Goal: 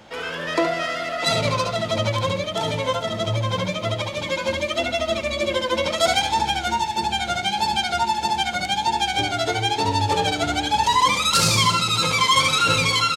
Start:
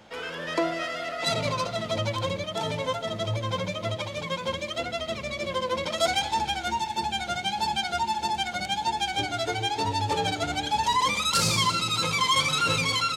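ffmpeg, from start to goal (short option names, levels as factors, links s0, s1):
-filter_complex "[0:a]asettb=1/sr,asplit=3[s0][s1][s2];[s0]atrim=end=4.214[s3];[s1]atrim=start=4.21:end=5.86,asetpts=PTS-STARTPTS,afade=t=in:d=0.004:c=qsin,afade=t=out:st=1.646:d=0.004:c=qsin,aecho=1:1:3.3:0.73,atrim=end_sample=72765[s4];[s2]atrim=start=5.856[s5];[s3][s4]acrossfade=d=0.004:c1=hsin:c2=qsin[s6];[s6][s5]acrossfade=d=0.004:c1=qsin:c2=hsin,aecho=1:1:71:0.422,volume=1.78"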